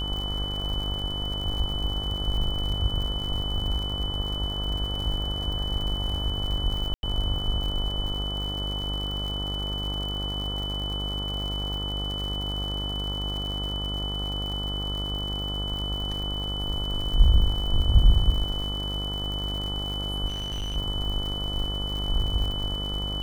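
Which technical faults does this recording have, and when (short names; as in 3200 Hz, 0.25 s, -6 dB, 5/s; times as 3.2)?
buzz 50 Hz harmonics 28 -32 dBFS
crackle 110/s -33 dBFS
tone 3000 Hz -31 dBFS
6.94–7.03 gap 91 ms
20.29–20.77 clipped -27.5 dBFS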